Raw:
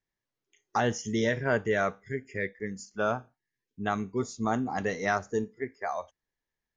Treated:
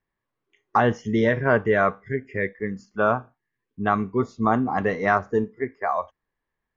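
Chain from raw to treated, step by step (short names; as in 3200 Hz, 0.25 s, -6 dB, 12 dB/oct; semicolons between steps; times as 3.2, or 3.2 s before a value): LPF 2300 Hz 12 dB/oct; bell 1100 Hz +7.5 dB 0.24 oct; gain +7 dB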